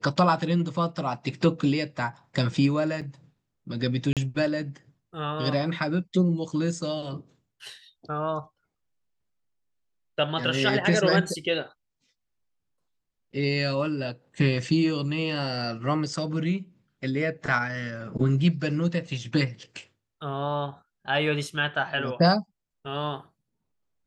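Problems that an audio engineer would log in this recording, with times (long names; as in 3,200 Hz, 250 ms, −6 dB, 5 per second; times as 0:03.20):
0:03.01–0:03.02: drop-out 6.2 ms
0:04.13–0:04.17: drop-out 37 ms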